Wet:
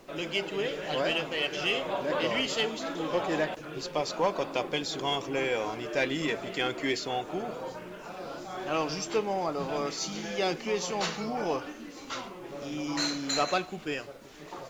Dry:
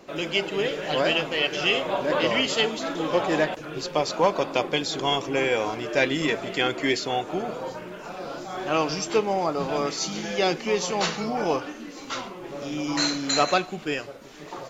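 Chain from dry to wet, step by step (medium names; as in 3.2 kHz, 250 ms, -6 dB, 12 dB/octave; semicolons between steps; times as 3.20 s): in parallel at -8.5 dB: saturation -23 dBFS, distortion -9 dB; on the sum: added noise pink -56 dBFS; trim -7.5 dB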